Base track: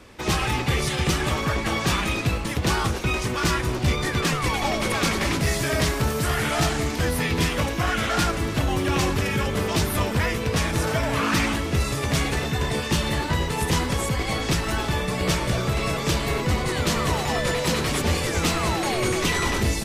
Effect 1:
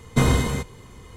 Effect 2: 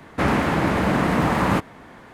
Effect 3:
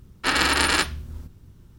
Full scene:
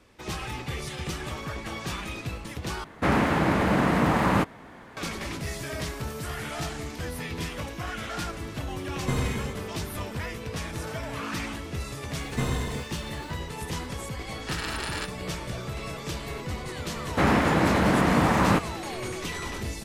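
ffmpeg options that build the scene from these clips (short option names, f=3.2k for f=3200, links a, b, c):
-filter_complex "[2:a]asplit=2[a][b];[1:a]asplit=2[c][d];[0:a]volume=-10.5dB[e];[d]acrusher=bits=7:mix=0:aa=0.000001[f];[e]asplit=2[g][h];[g]atrim=end=2.844[i];[a]atrim=end=2.13,asetpts=PTS-STARTPTS,volume=-2.5dB[j];[h]atrim=start=4.966[k];[c]atrim=end=1.16,asetpts=PTS-STARTPTS,volume=-9.5dB,afade=t=in:d=0.004:c=hsin,afade=t=out:st=1.156:d=0.004:c=hsin,adelay=8910[l];[f]atrim=end=1.16,asetpts=PTS-STARTPTS,volume=-9.5dB,afade=t=in:d=0.004:c=hsin,afade=t=out:st=1.156:d=0.004:c=hsin,adelay=12210[m];[3:a]atrim=end=1.78,asetpts=PTS-STARTPTS,volume=-13.5dB,afade=t=in:d=0.004:c=hsin,afade=t=out:st=1.776:d=0.004:c=hsin,adelay=14230[n];[b]atrim=end=2.13,asetpts=PTS-STARTPTS,volume=-1.5dB,afade=t=in:d=0.004:c=hsin,afade=t=out:st=2.126:d=0.004:c=hsin,adelay=16990[o];[i][j]acrossfade=d=0.004:c1=hsin:c2=hsin[p];[p][k]acrossfade=d=0.004:c1=hsin:c2=hsin[q];[q][l][m][n][o]amix=inputs=5:normalize=0"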